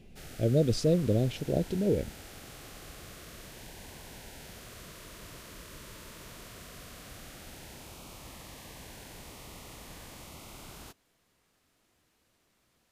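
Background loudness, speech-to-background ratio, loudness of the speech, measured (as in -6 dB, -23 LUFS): -47.0 LUFS, 18.5 dB, -28.5 LUFS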